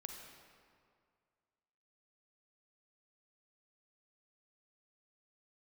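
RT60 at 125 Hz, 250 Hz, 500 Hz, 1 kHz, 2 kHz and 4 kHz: 2.2 s, 2.1 s, 2.1 s, 2.1 s, 1.8 s, 1.4 s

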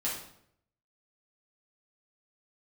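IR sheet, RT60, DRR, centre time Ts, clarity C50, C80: 0.70 s, -6.5 dB, 41 ms, 3.5 dB, 7.5 dB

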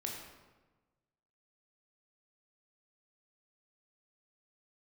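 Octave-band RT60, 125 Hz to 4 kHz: 1.6 s, 1.4 s, 1.3 s, 1.2 s, 1.0 s, 0.80 s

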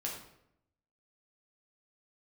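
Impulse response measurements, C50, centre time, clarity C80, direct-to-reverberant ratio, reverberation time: 4.5 dB, 36 ms, 7.5 dB, -3.0 dB, 0.75 s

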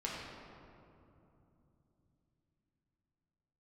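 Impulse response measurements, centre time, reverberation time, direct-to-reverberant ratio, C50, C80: 122 ms, 2.9 s, -5.5 dB, -1.0 dB, 0.5 dB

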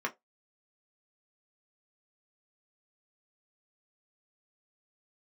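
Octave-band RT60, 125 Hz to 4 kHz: 0.15 s, 0.15 s, 0.20 s, 0.15 s, 0.15 s, 0.15 s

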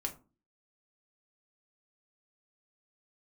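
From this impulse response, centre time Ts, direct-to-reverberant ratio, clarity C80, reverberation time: 9 ms, 2.5 dB, 20.0 dB, 0.35 s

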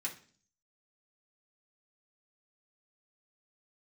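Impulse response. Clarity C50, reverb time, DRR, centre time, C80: 11.5 dB, 0.45 s, -3.5 dB, 14 ms, 17.0 dB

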